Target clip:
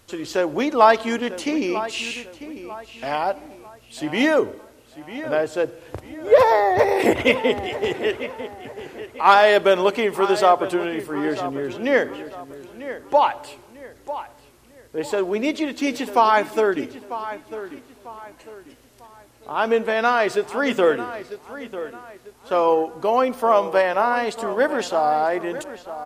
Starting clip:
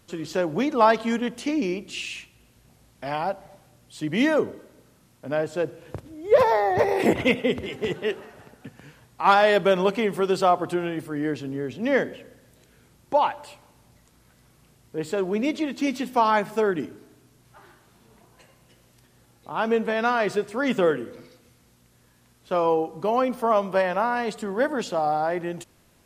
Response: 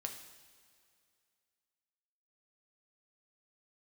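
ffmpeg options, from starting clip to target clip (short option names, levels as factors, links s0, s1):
-filter_complex "[0:a]equalizer=f=170:w=1.7:g=-11.5,asplit=2[s0][s1];[s1]adelay=946,lowpass=f=3600:p=1,volume=0.224,asplit=2[s2][s3];[s3]adelay=946,lowpass=f=3600:p=1,volume=0.36,asplit=2[s4][s5];[s5]adelay=946,lowpass=f=3600:p=1,volume=0.36,asplit=2[s6][s7];[s7]adelay=946,lowpass=f=3600:p=1,volume=0.36[s8];[s2][s4][s6][s8]amix=inputs=4:normalize=0[s9];[s0][s9]amix=inputs=2:normalize=0,volume=1.68"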